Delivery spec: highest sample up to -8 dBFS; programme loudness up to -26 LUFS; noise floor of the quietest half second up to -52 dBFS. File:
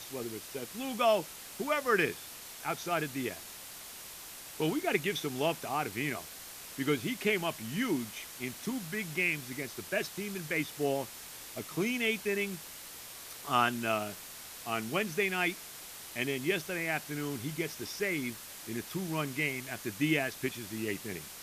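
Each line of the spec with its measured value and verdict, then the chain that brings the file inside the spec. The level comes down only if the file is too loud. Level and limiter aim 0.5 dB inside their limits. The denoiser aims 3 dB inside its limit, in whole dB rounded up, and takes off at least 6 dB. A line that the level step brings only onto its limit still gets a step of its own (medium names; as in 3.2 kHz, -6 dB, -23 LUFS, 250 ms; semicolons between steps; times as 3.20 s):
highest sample -13.5 dBFS: pass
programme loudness -34.0 LUFS: pass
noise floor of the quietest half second -47 dBFS: fail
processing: noise reduction 8 dB, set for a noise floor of -47 dBFS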